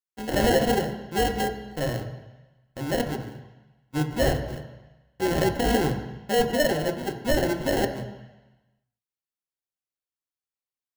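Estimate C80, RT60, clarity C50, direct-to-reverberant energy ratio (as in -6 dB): 10.5 dB, 1.1 s, 9.5 dB, 4.0 dB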